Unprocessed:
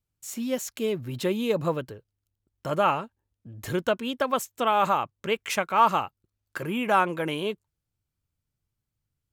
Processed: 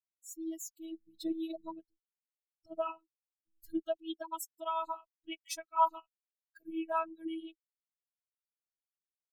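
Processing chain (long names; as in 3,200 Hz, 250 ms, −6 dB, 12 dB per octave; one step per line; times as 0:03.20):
spectral dynamics exaggerated over time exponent 3
phaser with its sweep stopped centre 500 Hz, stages 6
phases set to zero 325 Hz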